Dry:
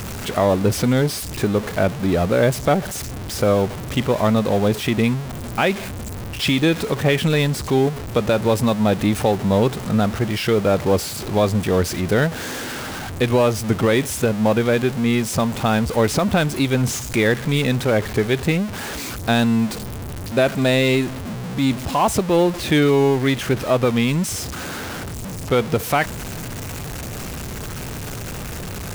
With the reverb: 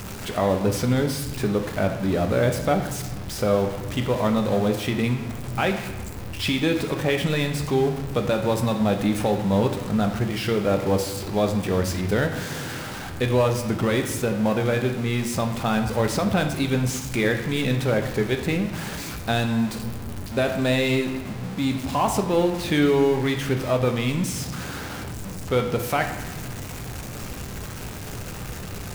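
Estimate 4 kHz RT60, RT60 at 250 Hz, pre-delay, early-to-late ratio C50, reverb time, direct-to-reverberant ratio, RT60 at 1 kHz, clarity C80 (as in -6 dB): 0.90 s, 1.7 s, 4 ms, 8.0 dB, 1.1 s, 4.5 dB, 1.2 s, 9.5 dB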